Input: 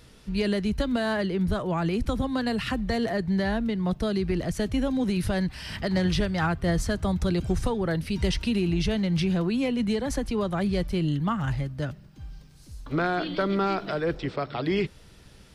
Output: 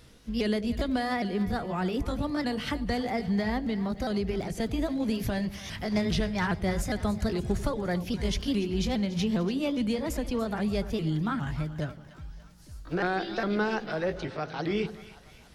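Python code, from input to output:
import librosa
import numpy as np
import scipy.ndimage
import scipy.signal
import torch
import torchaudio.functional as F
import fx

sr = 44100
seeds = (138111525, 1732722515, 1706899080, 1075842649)

y = fx.pitch_ramps(x, sr, semitones=3.0, every_ms=407)
y = fx.echo_split(y, sr, split_hz=680.0, low_ms=90, high_ms=289, feedback_pct=52, wet_db=-14.5)
y = y * 10.0 ** (-2.0 / 20.0)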